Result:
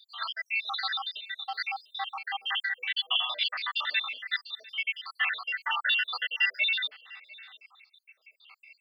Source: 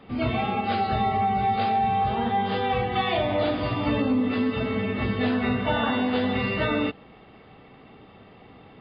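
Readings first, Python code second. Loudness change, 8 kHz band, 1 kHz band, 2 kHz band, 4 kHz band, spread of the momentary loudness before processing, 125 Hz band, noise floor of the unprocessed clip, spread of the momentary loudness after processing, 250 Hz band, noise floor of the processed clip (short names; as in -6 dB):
-4.5 dB, n/a, -13.5 dB, +2.5 dB, +6.0 dB, 3 LU, under -40 dB, -50 dBFS, 10 LU, under -40 dB, -75 dBFS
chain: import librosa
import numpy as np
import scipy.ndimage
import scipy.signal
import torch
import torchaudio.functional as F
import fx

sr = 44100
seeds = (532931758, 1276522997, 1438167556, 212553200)

y = fx.spec_dropout(x, sr, seeds[0], share_pct=82)
y = scipy.signal.sosfilt(scipy.signal.butter(4, 1300.0, 'highpass', fs=sr, output='sos'), y)
y = fx.high_shelf(y, sr, hz=2300.0, db=10.5)
y = y + 10.0 ** (-22.0 / 20.0) * np.pad(y, (int(699 * sr / 1000.0), 0))[:len(y)]
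y = y * librosa.db_to_amplitude(6.0)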